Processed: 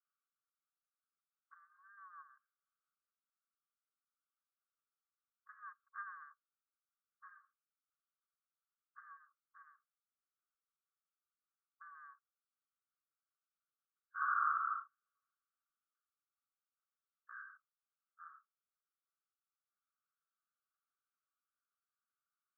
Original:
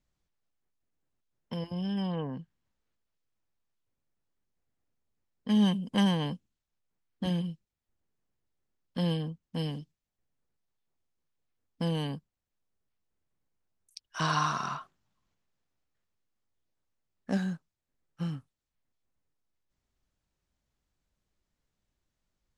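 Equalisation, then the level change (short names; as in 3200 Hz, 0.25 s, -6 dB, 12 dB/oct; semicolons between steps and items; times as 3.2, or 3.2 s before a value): brick-wall FIR high-pass 1100 Hz; steep low-pass 1500 Hz 72 dB/oct; +1.0 dB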